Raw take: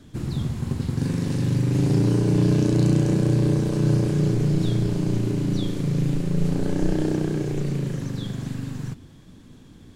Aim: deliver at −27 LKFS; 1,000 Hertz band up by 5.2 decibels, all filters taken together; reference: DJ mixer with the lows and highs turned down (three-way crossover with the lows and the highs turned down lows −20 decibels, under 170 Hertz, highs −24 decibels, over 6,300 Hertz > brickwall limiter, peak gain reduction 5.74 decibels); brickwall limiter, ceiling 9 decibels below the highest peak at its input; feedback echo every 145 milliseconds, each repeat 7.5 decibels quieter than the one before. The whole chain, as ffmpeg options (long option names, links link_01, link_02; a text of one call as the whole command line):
ffmpeg -i in.wav -filter_complex "[0:a]equalizer=frequency=1000:width_type=o:gain=6.5,alimiter=limit=-17.5dB:level=0:latency=1,acrossover=split=170 6300:gain=0.1 1 0.0631[link_01][link_02][link_03];[link_01][link_02][link_03]amix=inputs=3:normalize=0,aecho=1:1:145|290|435|580|725:0.422|0.177|0.0744|0.0312|0.0131,volume=5dB,alimiter=limit=-16.5dB:level=0:latency=1" out.wav